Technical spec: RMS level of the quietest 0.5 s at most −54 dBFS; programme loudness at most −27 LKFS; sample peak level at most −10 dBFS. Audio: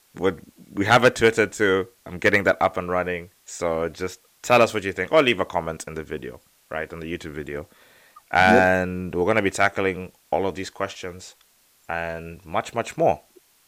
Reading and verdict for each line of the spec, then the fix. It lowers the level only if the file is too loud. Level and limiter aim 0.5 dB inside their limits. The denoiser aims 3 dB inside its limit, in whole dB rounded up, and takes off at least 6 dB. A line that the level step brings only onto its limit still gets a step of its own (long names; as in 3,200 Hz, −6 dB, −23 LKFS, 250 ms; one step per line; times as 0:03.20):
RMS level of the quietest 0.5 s −60 dBFS: in spec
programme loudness −22.5 LKFS: out of spec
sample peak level −3.0 dBFS: out of spec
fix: level −5 dB
brickwall limiter −10.5 dBFS